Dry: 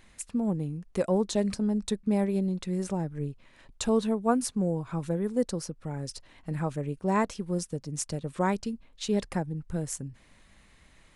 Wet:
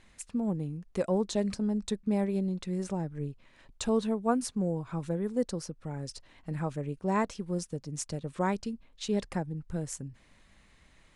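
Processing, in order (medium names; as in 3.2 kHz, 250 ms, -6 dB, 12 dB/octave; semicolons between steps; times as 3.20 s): low-pass 9.6 kHz 12 dB/octave; trim -2.5 dB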